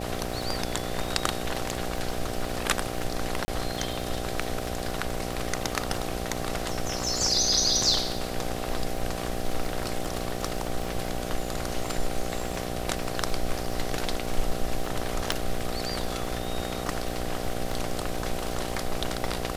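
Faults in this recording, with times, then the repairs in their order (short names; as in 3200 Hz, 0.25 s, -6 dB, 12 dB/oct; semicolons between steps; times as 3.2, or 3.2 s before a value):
buzz 60 Hz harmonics 13 -34 dBFS
crackle 53/s -33 dBFS
3.45–3.48 gap 30 ms
15.32 pop -10 dBFS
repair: de-click; de-hum 60 Hz, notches 13; interpolate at 3.45, 30 ms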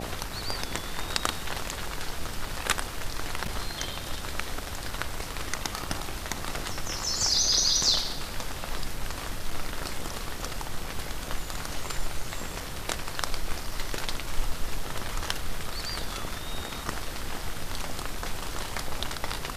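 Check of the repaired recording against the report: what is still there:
15.32 pop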